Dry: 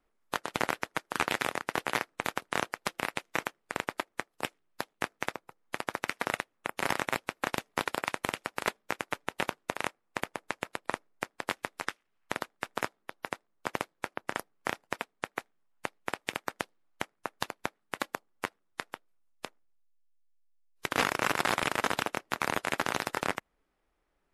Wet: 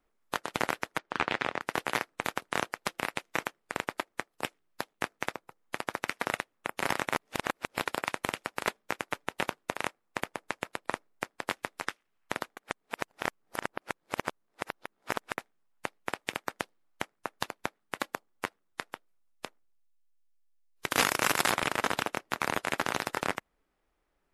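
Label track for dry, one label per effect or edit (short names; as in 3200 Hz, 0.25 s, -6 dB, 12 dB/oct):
0.980000	1.610000	LPF 3900 Hz
7.140000	7.800000	reverse
12.570000	15.380000	reverse
20.880000	21.510000	high shelf 4400 Hz +10.5 dB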